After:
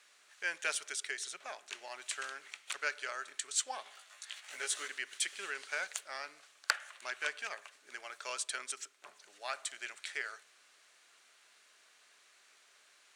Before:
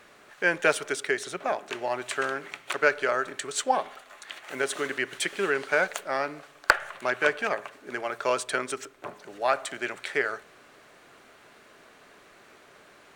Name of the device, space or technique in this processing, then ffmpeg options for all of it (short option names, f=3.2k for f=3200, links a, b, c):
piezo pickup straight into a mixer: -filter_complex "[0:a]asettb=1/sr,asplit=3[a][b][c];[a]atrim=end=3.844[d];[b]atrim=start=3.84:end=4.88,asetpts=PTS-STARTPTS,afade=t=in:d=0.004:c=qsin,afade=t=out:st=1.036:d=0.004:c=qsin,asplit=2[e][f];[f]adelay=17,volume=-2dB[g];[e][g]amix=inputs=2:normalize=0,atrim=end_sample=45864[h];[c]atrim=start=4.876[i];[d][h]acrossfade=d=0.004:c1=hsin:c2=qsin[j];[j][i]acrossfade=d=0.004:c1=qsin:c2=hsin,lowpass=7.9k,aderivative,volume=1dB"